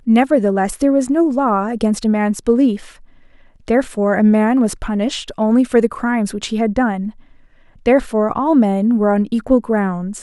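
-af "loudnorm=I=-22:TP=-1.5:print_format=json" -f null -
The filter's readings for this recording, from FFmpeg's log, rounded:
"input_i" : "-16.1",
"input_tp" : "-1.3",
"input_lra" : "1.8",
"input_thresh" : "-26.7",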